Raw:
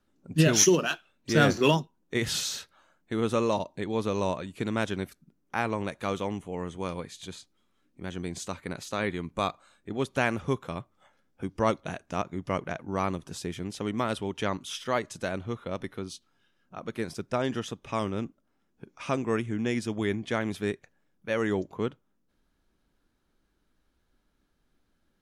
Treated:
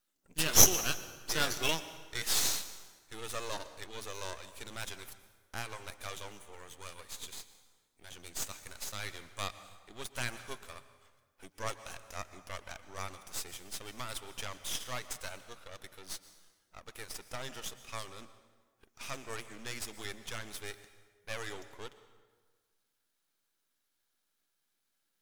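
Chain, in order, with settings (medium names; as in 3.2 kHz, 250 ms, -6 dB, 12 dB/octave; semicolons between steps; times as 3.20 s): tilt EQ +4.5 dB/octave; half-wave rectifier; plate-style reverb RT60 1.5 s, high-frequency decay 0.7×, pre-delay 105 ms, DRR 13 dB; trim -5.5 dB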